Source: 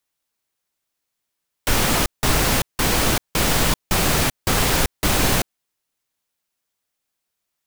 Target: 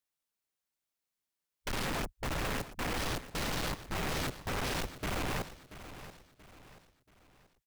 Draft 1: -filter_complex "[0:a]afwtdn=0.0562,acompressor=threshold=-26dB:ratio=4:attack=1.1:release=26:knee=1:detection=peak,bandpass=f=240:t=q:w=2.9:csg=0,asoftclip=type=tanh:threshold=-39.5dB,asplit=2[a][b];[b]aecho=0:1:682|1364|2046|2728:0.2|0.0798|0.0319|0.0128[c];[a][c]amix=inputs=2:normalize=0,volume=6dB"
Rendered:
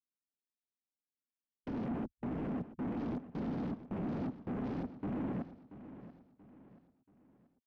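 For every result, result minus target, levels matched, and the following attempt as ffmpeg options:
250 Hz band +8.5 dB; compressor: peak gain reduction +5 dB
-filter_complex "[0:a]afwtdn=0.0562,acompressor=threshold=-26dB:ratio=4:attack=1.1:release=26:knee=1:detection=peak,asoftclip=type=tanh:threshold=-39.5dB,asplit=2[a][b];[b]aecho=0:1:682|1364|2046|2728:0.2|0.0798|0.0319|0.0128[c];[a][c]amix=inputs=2:normalize=0,volume=6dB"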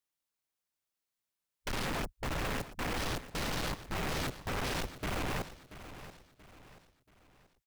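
compressor: peak gain reduction +5 dB
-filter_complex "[0:a]afwtdn=0.0562,acompressor=threshold=-19.5dB:ratio=4:attack=1.1:release=26:knee=1:detection=peak,asoftclip=type=tanh:threshold=-39.5dB,asplit=2[a][b];[b]aecho=0:1:682|1364|2046|2728:0.2|0.0798|0.0319|0.0128[c];[a][c]amix=inputs=2:normalize=0,volume=6dB"

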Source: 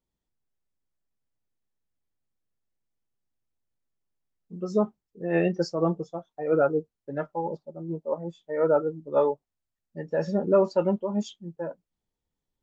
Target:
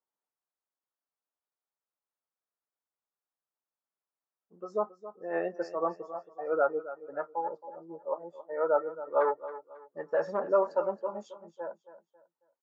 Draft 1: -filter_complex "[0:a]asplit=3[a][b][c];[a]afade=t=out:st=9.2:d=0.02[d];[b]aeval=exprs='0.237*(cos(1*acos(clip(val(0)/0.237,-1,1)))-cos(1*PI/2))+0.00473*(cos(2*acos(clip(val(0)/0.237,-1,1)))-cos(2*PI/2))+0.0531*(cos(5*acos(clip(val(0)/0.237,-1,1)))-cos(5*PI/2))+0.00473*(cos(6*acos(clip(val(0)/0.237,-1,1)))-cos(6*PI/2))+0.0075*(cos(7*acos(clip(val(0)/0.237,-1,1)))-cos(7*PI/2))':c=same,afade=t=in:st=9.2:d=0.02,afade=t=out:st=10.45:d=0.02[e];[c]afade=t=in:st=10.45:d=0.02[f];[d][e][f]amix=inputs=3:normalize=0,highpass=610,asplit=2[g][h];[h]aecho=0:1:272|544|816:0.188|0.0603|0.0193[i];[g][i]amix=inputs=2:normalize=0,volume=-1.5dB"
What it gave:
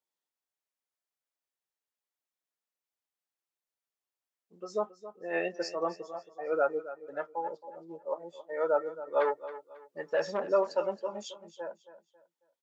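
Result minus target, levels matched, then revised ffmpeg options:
4000 Hz band +16.0 dB
-filter_complex "[0:a]asplit=3[a][b][c];[a]afade=t=out:st=9.2:d=0.02[d];[b]aeval=exprs='0.237*(cos(1*acos(clip(val(0)/0.237,-1,1)))-cos(1*PI/2))+0.00473*(cos(2*acos(clip(val(0)/0.237,-1,1)))-cos(2*PI/2))+0.0531*(cos(5*acos(clip(val(0)/0.237,-1,1)))-cos(5*PI/2))+0.00473*(cos(6*acos(clip(val(0)/0.237,-1,1)))-cos(6*PI/2))+0.0075*(cos(7*acos(clip(val(0)/0.237,-1,1)))-cos(7*PI/2))':c=same,afade=t=in:st=9.2:d=0.02,afade=t=out:st=10.45:d=0.02[e];[c]afade=t=in:st=10.45:d=0.02[f];[d][e][f]amix=inputs=3:normalize=0,highpass=610,highshelf=f=1.9k:t=q:w=1.5:g=-13,asplit=2[g][h];[h]aecho=0:1:272|544|816:0.188|0.0603|0.0193[i];[g][i]amix=inputs=2:normalize=0,volume=-1.5dB"

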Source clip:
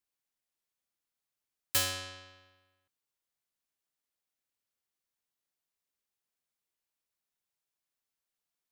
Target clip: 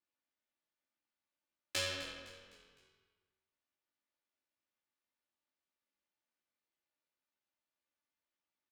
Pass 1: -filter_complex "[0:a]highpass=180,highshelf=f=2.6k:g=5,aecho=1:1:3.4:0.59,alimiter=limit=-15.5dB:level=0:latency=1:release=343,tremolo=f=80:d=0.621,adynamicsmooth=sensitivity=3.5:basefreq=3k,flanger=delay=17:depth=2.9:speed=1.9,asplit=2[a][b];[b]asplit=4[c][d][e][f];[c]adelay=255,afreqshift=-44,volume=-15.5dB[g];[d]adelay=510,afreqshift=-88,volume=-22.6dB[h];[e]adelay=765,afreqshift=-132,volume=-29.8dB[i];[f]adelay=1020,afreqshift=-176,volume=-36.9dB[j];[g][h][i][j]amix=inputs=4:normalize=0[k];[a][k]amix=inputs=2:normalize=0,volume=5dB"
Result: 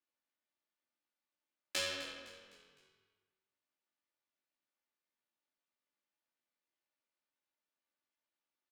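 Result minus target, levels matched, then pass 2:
125 Hz band -9.0 dB
-filter_complex "[0:a]highpass=85,highshelf=f=2.6k:g=5,aecho=1:1:3.4:0.59,alimiter=limit=-15.5dB:level=0:latency=1:release=343,tremolo=f=80:d=0.621,adynamicsmooth=sensitivity=3.5:basefreq=3k,flanger=delay=17:depth=2.9:speed=1.9,asplit=2[a][b];[b]asplit=4[c][d][e][f];[c]adelay=255,afreqshift=-44,volume=-15.5dB[g];[d]adelay=510,afreqshift=-88,volume=-22.6dB[h];[e]adelay=765,afreqshift=-132,volume=-29.8dB[i];[f]adelay=1020,afreqshift=-176,volume=-36.9dB[j];[g][h][i][j]amix=inputs=4:normalize=0[k];[a][k]amix=inputs=2:normalize=0,volume=5dB"

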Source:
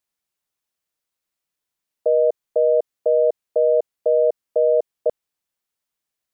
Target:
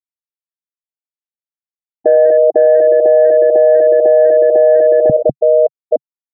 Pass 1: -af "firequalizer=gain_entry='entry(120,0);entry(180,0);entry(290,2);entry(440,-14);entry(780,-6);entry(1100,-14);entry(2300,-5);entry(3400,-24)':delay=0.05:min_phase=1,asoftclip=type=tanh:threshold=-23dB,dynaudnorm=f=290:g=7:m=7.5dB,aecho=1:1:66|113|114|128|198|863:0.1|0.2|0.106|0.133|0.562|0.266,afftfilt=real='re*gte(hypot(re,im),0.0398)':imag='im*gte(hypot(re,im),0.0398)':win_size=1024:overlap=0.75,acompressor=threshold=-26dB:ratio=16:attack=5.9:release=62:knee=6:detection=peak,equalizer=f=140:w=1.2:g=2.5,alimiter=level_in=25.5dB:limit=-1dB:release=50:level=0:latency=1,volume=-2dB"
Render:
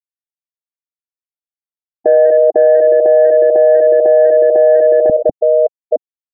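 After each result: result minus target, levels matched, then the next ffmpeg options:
compressor: peak gain reduction +9.5 dB; 125 Hz band -9.0 dB
-af "firequalizer=gain_entry='entry(120,0);entry(180,0);entry(290,2);entry(440,-14);entry(780,-6);entry(1100,-14);entry(2300,-5);entry(3400,-24)':delay=0.05:min_phase=1,asoftclip=type=tanh:threshold=-23dB,dynaudnorm=f=290:g=7:m=7.5dB,aecho=1:1:66|113|114|128|198|863:0.1|0.2|0.106|0.133|0.562|0.266,afftfilt=real='re*gte(hypot(re,im),0.0398)':imag='im*gte(hypot(re,im),0.0398)':win_size=1024:overlap=0.75,equalizer=f=140:w=1.2:g=2.5,alimiter=level_in=25.5dB:limit=-1dB:release=50:level=0:latency=1,volume=-2dB"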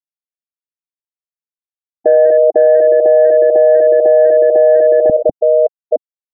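125 Hz band -8.5 dB
-af "firequalizer=gain_entry='entry(120,0);entry(180,0);entry(290,2);entry(440,-14);entry(780,-6);entry(1100,-14);entry(2300,-5);entry(3400,-24)':delay=0.05:min_phase=1,asoftclip=type=tanh:threshold=-23dB,dynaudnorm=f=290:g=7:m=7.5dB,aecho=1:1:66|113|114|128|198|863:0.1|0.2|0.106|0.133|0.562|0.266,afftfilt=real='re*gte(hypot(re,im),0.0398)':imag='im*gte(hypot(re,im),0.0398)':win_size=1024:overlap=0.75,equalizer=f=140:w=1.2:g=13,alimiter=level_in=25.5dB:limit=-1dB:release=50:level=0:latency=1,volume=-2dB"

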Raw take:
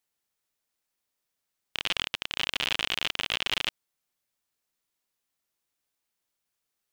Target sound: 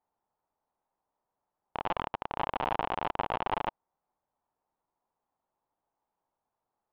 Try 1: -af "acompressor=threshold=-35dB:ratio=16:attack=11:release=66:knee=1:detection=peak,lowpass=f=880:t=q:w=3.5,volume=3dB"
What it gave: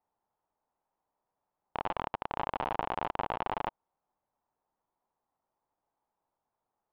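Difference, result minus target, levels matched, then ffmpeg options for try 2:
compressor: peak gain reduction +11.5 dB
-af "lowpass=f=880:t=q:w=3.5,volume=3dB"

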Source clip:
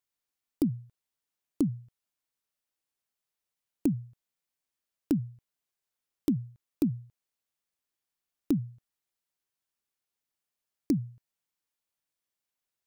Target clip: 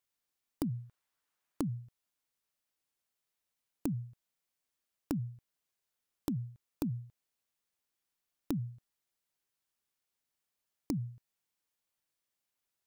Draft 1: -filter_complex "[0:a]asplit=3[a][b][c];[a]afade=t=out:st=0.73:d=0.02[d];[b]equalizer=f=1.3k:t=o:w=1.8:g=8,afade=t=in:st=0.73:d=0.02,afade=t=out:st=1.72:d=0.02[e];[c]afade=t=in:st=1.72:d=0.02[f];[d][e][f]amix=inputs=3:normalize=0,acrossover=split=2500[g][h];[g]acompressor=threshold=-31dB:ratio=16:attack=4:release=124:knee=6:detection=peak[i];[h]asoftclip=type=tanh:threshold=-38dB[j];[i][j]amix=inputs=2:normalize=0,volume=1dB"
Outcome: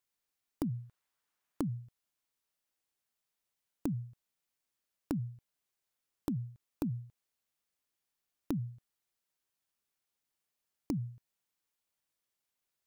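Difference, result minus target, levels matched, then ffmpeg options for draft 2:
soft clip: distortion +10 dB
-filter_complex "[0:a]asplit=3[a][b][c];[a]afade=t=out:st=0.73:d=0.02[d];[b]equalizer=f=1.3k:t=o:w=1.8:g=8,afade=t=in:st=0.73:d=0.02,afade=t=out:st=1.72:d=0.02[e];[c]afade=t=in:st=1.72:d=0.02[f];[d][e][f]amix=inputs=3:normalize=0,acrossover=split=2500[g][h];[g]acompressor=threshold=-31dB:ratio=16:attack=4:release=124:knee=6:detection=peak[i];[h]asoftclip=type=tanh:threshold=-29dB[j];[i][j]amix=inputs=2:normalize=0,volume=1dB"

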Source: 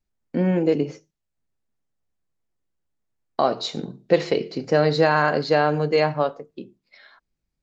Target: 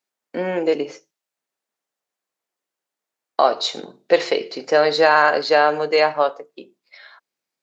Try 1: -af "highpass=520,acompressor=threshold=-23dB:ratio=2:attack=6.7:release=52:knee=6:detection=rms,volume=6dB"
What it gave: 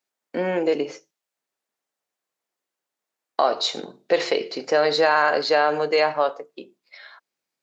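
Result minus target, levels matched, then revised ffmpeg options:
compressor: peak gain reduction +5.5 dB
-af "highpass=520,volume=6dB"

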